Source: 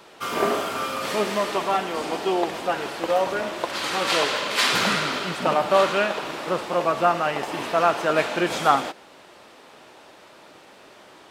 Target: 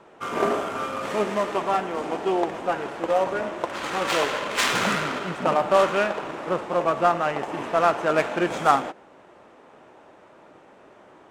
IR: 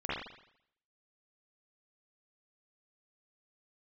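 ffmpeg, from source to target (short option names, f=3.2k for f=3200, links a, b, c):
-af "aexciter=amount=3:drive=9.3:freq=6.3k,adynamicsmooth=sensitivity=1:basefreq=1.8k"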